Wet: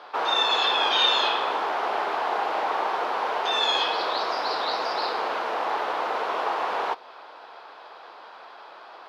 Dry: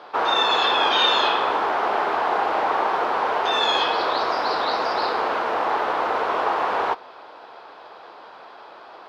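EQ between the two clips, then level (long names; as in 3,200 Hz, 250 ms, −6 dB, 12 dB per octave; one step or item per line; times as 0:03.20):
high-pass filter 110 Hz 12 dB per octave
dynamic equaliser 1,400 Hz, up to −4 dB, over −32 dBFS, Q 0.87
low-shelf EQ 400 Hz −10.5 dB
0.0 dB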